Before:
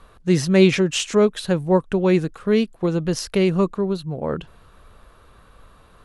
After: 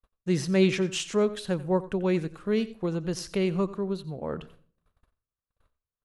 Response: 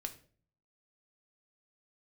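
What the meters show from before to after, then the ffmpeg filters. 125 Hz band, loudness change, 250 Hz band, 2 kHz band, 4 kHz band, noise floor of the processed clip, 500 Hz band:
−8.0 dB, −8.0 dB, −8.0 dB, −8.0 dB, −8.0 dB, below −85 dBFS, −8.0 dB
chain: -filter_complex "[0:a]agate=range=-42dB:threshold=-43dB:ratio=16:detection=peak,asplit=2[link_01][link_02];[1:a]atrim=start_sample=2205,adelay=89[link_03];[link_02][link_03]afir=irnorm=-1:irlink=0,volume=-14dB[link_04];[link_01][link_04]amix=inputs=2:normalize=0,volume=-8dB"

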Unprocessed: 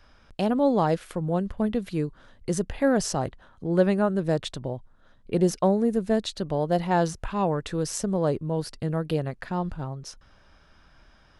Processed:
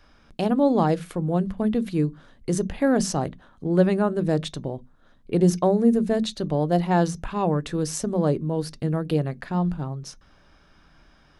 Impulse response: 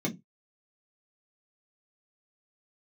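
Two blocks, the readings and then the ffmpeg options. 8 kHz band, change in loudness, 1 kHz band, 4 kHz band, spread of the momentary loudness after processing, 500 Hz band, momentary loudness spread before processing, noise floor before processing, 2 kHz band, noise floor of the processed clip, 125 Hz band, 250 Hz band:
+1.0 dB, +2.5 dB, +1.0 dB, +1.0 dB, 12 LU, +1.5 dB, 12 LU, −57 dBFS, +0.5 dB, −57 dBFS, +4.0 dB, +3.5 dB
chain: -filter_complex "[0:a]asplit=2[link_01][link_02];[1:a]atrim=start_sample=2205,highshelf=frequency=4300:gain=11[link_03];[link_02][link_03]afir=irnorm=-1:irlink=0,volume=-20dB[link_04];[link_01][link_04]amix=inputs=2:normalize=0"

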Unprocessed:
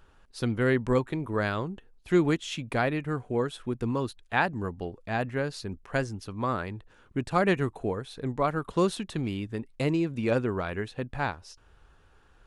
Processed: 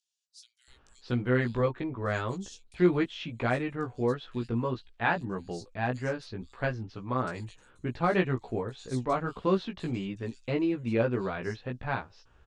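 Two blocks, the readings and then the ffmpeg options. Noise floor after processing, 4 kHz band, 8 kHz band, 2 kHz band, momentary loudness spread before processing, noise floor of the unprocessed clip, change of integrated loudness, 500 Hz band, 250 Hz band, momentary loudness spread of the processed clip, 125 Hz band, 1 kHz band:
−64 dBFS, −3.5 dB, −6.0 dB, −2.0 dB, 10 LU, −60 dBFS, −1.5 dB, −1.5 dB, −1.5 dB, 11 LU, −1.0 dB, −2.0 dB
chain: -filter_complex "[0:a]flanger=delay=15.5:depth=2.2:speed=1.7,lowpass=frequency=7700:width=0.5412,lowpass=frequency=7700:width=1.3066,acrossover=split=4700[link_01][link_02];[link_01]adelay=680[link_03];[link_03][link_02]amix=inputs=2:normalize=0,volume=1dB"

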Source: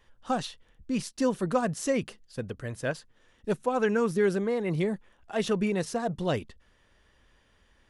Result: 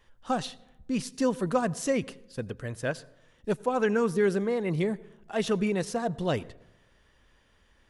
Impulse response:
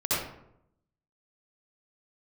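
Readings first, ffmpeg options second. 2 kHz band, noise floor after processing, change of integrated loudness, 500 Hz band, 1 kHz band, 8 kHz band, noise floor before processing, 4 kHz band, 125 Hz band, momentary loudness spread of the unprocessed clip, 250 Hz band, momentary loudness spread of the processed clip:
0.0 dB, −64 dBFS, 0.0 dB, +0.5 dB, 0.0 dB, 0.0 dB, −65 dBFS, 0.0 dB, 0.0 dB, 13 LU, 0.0 dB, 14 LU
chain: -filter_complex "[0:a]asplit=2[link_01][link_02];[1:a]atrim=start_sample=2205,asetrate=33957,aresample=44100[link_03];[link_02][link_03]afir=irnorm=-1:irlink=0,volume=-34.5dB[link_04];[link_01][link_04]amix=inputs=2:normalize=0"

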